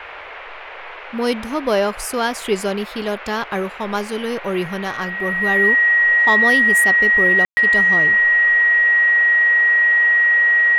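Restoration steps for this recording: notch 1900 Hz, Q 30; room tone fill 7.45–7.57; noise print and reduce 29 dB

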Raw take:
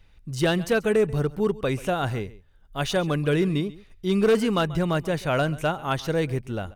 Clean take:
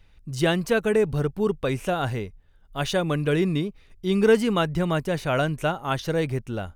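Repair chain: clip repair -14 dBFS; inverse comb 0.136 s -19.5 dB

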